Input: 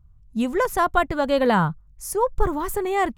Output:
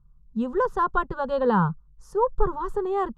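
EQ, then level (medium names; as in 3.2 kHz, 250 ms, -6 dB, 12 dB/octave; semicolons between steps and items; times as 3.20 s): Bessel low-pass 2.1 kHz, order 2; static phaser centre 440 Hz, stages 8; 0.0 dB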